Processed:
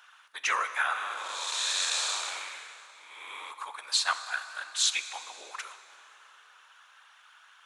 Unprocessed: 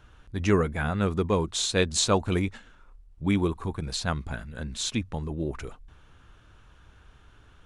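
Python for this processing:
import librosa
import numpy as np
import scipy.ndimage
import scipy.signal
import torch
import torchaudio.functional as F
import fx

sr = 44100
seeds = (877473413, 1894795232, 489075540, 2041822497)

y = fx.spec_blur(x, sr, span_ms=438.0, at=(0.93, 3.5), fade=0.02)
y = fx.whisperise(y, sr, seeds[0])
y = scipy.signal.sosfilt(scipy.signal.butter(4, 970.0, 'highpass', fs=sr, output='sos'), y)
y = fx.rev_plate(y, sr, seeds[1], rt60_s=3.4, hf_ratio=0.75, predelay_ms=0, drr_db=10.0)
y = F.gain(torch.from_numpy(y), 5.5).numpy()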